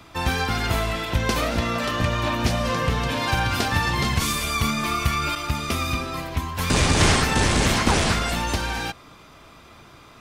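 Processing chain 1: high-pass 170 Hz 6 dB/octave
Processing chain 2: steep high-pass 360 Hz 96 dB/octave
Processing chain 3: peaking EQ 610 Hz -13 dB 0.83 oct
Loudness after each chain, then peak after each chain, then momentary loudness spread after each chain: -23.5 LUFS, -24.5 LUFS, -23.5 LUFS; -7.5 dBFS, -8.5 dBFS, -7.0 dBFS; 7 LU, 7 LU, 7 LU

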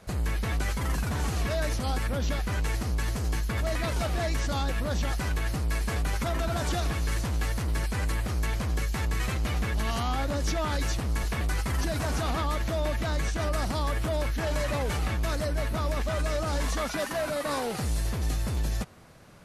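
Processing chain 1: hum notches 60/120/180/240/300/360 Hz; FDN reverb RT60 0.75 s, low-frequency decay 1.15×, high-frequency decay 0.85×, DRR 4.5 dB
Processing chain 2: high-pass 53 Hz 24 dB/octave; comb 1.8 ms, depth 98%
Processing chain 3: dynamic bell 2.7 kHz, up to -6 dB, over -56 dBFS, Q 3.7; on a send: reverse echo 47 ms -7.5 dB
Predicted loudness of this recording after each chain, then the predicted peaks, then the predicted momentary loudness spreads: -29.5 LUFS, -26.5 LUFS, -30.0 LUFS; -15.5 dBFS, -12.5 dBFS, -16.0 dBFS; 2 LU, 2 LU, 2 LU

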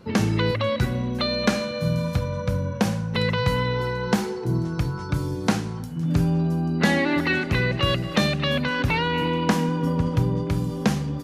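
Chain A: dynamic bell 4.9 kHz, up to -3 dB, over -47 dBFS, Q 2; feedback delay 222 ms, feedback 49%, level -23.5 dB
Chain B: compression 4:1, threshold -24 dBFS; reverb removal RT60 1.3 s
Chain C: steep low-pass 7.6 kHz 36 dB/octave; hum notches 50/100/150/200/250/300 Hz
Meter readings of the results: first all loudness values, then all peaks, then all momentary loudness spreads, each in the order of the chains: -24.0 LUFS, -31.0 LUFS, -24.0 LUFS; -7.0 dBFS, -11.0 dBFS, -7.0 dBFS; 5 LU, 4 LU, 5 LU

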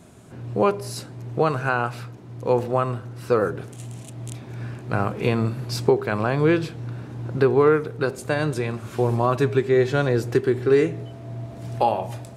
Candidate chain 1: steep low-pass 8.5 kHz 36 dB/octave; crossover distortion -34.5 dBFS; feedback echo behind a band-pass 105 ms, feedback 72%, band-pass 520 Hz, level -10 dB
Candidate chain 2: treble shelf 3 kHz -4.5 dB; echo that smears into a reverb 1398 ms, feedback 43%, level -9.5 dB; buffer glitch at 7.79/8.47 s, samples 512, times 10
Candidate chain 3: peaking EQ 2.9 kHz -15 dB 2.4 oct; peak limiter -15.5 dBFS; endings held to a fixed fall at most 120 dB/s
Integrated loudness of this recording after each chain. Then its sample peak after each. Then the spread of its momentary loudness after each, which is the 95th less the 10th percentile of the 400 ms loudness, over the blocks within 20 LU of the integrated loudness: -23.5 LUFS, -23.0 LUFS, -28.5 LUFS; -4.0 dBFS, -4.0 dBFS, -15.5 dBFS; 17 LU, 12 LU, 12 LU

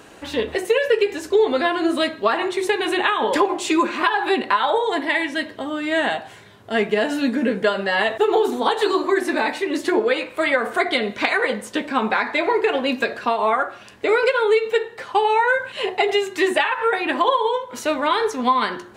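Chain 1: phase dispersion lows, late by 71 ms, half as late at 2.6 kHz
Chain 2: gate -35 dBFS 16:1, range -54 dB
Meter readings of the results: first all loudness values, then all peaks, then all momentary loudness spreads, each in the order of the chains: -20.5 LUFS, -20.5 LUFS; -5.0 dBFS, -3.5 dBFS; 6 LU, 5 LU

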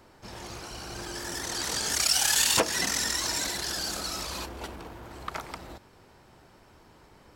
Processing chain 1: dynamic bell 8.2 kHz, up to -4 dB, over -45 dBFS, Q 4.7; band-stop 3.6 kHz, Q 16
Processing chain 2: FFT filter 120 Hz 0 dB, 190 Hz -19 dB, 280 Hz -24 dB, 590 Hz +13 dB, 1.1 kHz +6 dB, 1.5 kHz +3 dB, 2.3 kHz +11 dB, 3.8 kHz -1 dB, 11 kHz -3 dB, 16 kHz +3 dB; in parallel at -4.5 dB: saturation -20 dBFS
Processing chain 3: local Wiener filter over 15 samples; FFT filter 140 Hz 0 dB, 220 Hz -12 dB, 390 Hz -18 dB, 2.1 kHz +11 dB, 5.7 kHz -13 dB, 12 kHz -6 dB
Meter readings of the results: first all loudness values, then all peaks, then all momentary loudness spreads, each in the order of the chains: -27.5 LUFS, -22.5 LUFS, -29.5 LUFS; -9.5 dBFS, -2.5 dBFS, -10.5 dBFS; 20 LU, 17 LU, 21 LU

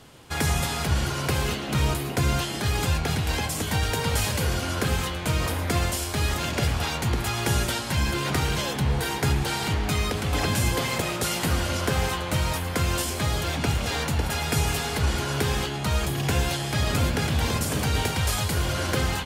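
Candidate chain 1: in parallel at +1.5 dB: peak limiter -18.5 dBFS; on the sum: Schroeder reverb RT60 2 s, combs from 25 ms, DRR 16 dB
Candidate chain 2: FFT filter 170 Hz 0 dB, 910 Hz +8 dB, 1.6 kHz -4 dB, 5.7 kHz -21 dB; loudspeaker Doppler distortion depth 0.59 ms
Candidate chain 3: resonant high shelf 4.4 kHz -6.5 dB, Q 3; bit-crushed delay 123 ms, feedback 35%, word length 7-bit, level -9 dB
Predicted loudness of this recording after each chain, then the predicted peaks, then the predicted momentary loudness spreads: -20.0 LUFS, -25.0 LUFS, -24.5 LUFS; -7.0 dBFS, -8.5 dBFS, -10.5 dBFS; 1 LU, 2 LU, 2 LU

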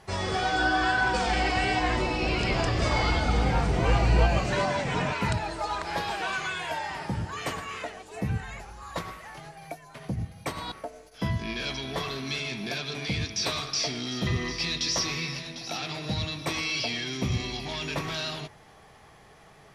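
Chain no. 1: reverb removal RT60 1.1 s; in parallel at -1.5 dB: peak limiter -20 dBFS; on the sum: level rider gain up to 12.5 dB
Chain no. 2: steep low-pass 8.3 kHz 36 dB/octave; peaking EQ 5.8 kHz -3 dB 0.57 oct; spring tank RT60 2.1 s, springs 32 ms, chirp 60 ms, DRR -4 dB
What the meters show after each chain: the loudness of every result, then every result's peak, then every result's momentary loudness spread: -16.0 LUFS, -23.0 LUFS; -1.5 dBFS, -6.5 dBFS; 10 LU, 13 LU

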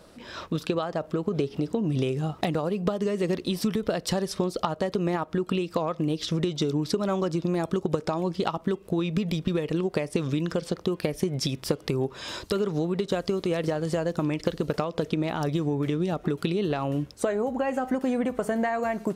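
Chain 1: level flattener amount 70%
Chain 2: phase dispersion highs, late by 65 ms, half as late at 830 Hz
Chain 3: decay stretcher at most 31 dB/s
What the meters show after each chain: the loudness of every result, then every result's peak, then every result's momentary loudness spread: -24.0 LUFS, -28.0 LUFS, -26.0 LUFS; -3.5 dBFS, -13.0 dBFS, -2.0 dBFS; 2 LU, 3 LU, 2 LU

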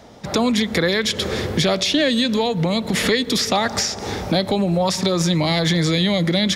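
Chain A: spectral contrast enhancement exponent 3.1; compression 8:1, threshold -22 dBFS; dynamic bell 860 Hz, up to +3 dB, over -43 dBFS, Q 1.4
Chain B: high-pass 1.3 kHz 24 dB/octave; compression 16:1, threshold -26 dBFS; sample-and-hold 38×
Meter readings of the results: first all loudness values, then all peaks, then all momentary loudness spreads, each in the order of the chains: -25.5 LUFS, -33.5 LUFS; -13.5 dBFS, -16.0 dBFS; 2 LU, 4 LU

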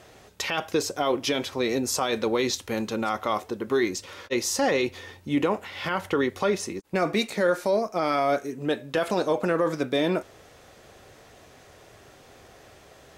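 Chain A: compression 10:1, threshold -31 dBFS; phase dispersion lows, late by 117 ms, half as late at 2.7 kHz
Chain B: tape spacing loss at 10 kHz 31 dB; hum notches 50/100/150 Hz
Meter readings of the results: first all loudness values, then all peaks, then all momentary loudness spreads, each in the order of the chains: -36.0 LUFS, -28.5 LUFS; -18.0 dBFS, -14.0 dBFS; 17 LU, 6 LU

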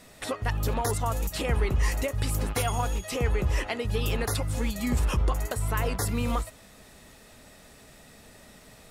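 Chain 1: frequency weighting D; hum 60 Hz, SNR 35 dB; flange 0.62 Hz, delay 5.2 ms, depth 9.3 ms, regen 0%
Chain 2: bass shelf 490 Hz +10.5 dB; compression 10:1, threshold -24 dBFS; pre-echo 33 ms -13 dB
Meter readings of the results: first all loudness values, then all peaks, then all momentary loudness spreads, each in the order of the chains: -30.0 LUFS, -30.0 LUFS; -12.0 dBFS, -15.5 dBFS; 20 LU, 18 LU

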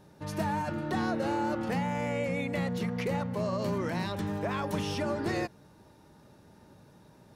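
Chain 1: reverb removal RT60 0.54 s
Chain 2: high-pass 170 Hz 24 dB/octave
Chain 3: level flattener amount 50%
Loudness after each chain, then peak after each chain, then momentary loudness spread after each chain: -33.5 LUFS, -32.5 LUFS, -30.5 LUFS; -19.0 dBFS, -19.0 dBFS, -17.0 dBFS; 3 LU, 4 LU, 13 LU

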